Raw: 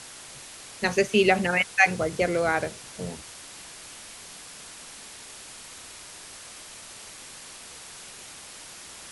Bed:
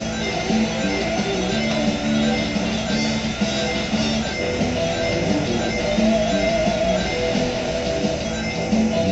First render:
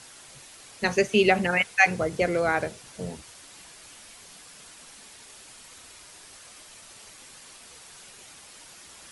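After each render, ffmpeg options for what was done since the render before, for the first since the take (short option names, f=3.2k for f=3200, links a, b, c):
-af "afftdn=nr=6:nf=-44"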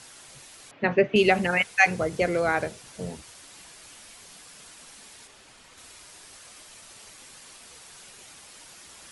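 -filter_complex "[0:a]asettb=1/sr,asplit=3[a][b][c];[a]atrim=end=0.714[d];[b]atrim=start=0.71:end=1.16,asetpts=PTS-STARTPTS,afade=t=in:d=0.004:c=qsin,afade=t=out:st=0.446:d=0.004:c=qsin,highpass=100,equalizer=f=150:t=q:w=4:g=7,equalizer=f=290:t=q:w=4:g=9,equalizer=f=610:t=q:w=4:g=5,lowpass=f=2.8k:w=0.5412,lowpass=f=2.8k:w=1.3066[e];[c]atrim=start=1.156[f];[d][e]acrossfade=d=0.004:c1=hsin:c2=qsin[g];[g][f]acrossfade=d=0.004:c1=qsin:c2=hsin,asettb=1/sr,asplit=3[h][i][j];[h]atrim=end=5.274[k];[i]atrim=start=5.27:end=5.78,asetpts=PTS-STARTPTS,afade=t=in:d=0.004:c=qsin,afade=t=out:st=0.506:d=0.004:c=qsin,lowpass=f=3.4k:p=1[l];[j]atrim=start=5.776[m];[k][l]acrossfade=d=0.004:c1=hsin:c2=qsin[n];[n][m]acrossfade=d=0.004:c1=qsin:c2=hsin"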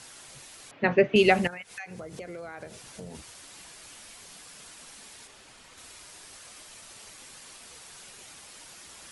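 -filter_complex "[0:a]asettb=1/sr,asplit=3[a][b][c];[a]atrim=end=1.474[d];[b]atrim=start=1.47:end=3.15,asetpts=PTS-STARTPTS,afade=t=in:d=0.004:c=qsin,afade=t=out:st=1.676:d=0.004:c=qsin,acompressor=threshold=-37dB:ratio=8:attack=3.2:release=140:knee=1:detection=peak[e];[c]atrim=start=3.146[f];[d][e]acrossfade=d=0.004:c1=hsin:c2=qsin[g];[g][f]acrossfade=d=0.004:c1=qsin:c2=hsin"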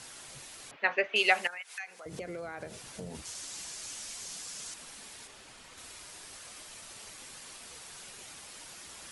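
-filter_complex "[0:a]asettb=1/sr,asplit=3[a][b][c];[a]atrim=end=0.764[d];[b]atrim=start=0.76:end=2.06,asetpts=PTS-STARTPTS,afade=t=in:d=0.004:c=qsin,afade=t=out:st=1.296:d=0.004:c=qsin,highpass=890[e];[c]atrim=start=2.056[f];[d][e]acrossfade=d=0.004:c1=hsin:c2=qsin[g];[g][f]acrossfade=d=0.004:c1=qsin:c2=hsin,asettb=1/sr,asplit=3[h][i][j];[h]atrim=end=3.254[k];[i]atrim=start=3.25:end=4.74,asetpts=PTS-STARTPTS,afade=t=in:d=0.004:c=qsin,afade=t=out:st=1.486:d=0.004:c=qsin,equalizer=f=6.4k:w=1:g=9.5[l];[j]atrim=start=4.736[m];[k][l]acrossfade=d=0.004:c1=hsin:c2=qsin[n];[n][m]acrossfade=d=0.004:c1=qsin:c2=hsin"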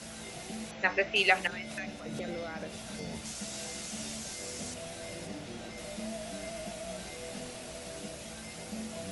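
-filter_complex "[1:a]volume=-22dB[a];[0:a][a]amix=inputs=2:normalize=0"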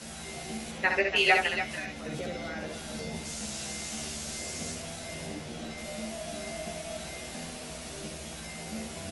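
-filter_complex "[0:a]asplit=2[a][b];[b]adelay=13,volume=-3.5dB[c];[a][c]amix=inputs=2:normalize=0,aecho=1:1:66|287:0.562|0.299"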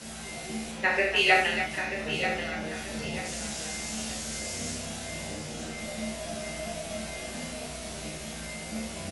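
-filter_complex "[0:a]asplit=2[a][b];[b]adelay=32,volume=-4dB[c];[a][c]amix=inputs=2:normalize=0,aecho=1:1:935|1870|2805|3740:0.355|0.124|0.0435|0.0152"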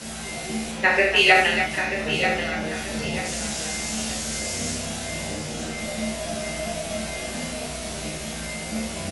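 -af "volume=6.5dB,alimiter=limit=-3dB:level=0:latency=1"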